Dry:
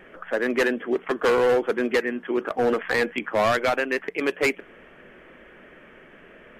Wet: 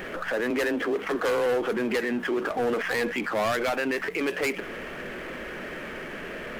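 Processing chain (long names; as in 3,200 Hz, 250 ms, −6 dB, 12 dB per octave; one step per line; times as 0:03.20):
high-shelf EQ 8,400 Hz +11 dB
brickwall limiter −27 dBFS, peak gain reduction 14.5 dB
0:00.50–0:01.46: frequency shifter +23 Hz
power curve on the samples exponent 0.7
level +4.5 dB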